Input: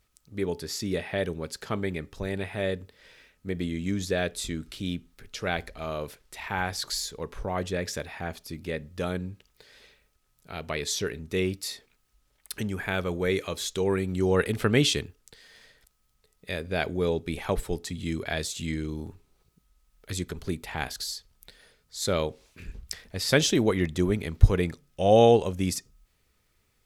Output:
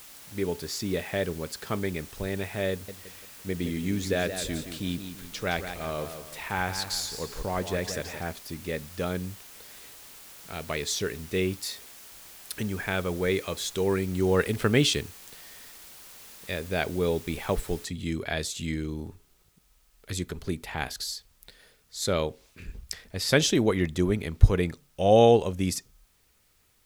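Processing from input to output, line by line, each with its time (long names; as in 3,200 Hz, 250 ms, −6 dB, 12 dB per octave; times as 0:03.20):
0:02.71–0:08.23: feedback echo with a swinging delay time 170 ms, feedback 42%, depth 95 cents, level −9 dB
0:17.85: noise floor change −48 dB −68 dB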